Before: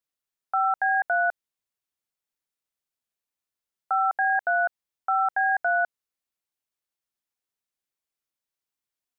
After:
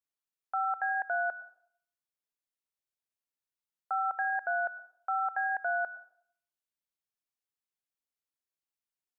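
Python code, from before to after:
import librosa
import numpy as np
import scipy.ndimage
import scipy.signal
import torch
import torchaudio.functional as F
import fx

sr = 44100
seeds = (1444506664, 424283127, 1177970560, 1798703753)

y = fx.rev_plate(x, sr, seeds[0], rt60_s=0.59, hf_ratio=0.75, predelay_ms=90, drr_db=16.0)
y = y * librosa.db_to_amplitude(-7.5)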